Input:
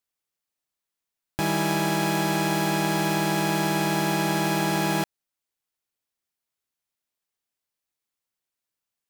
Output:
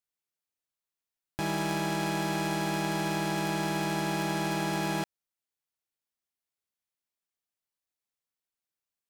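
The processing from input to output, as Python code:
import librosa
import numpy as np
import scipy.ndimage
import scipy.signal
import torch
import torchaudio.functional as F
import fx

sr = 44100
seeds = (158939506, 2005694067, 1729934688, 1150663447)

y = fx.tracing_dist(x, sr, depth_ms=0.034)
y = y * librosa.db_to_amplitude(-6.0)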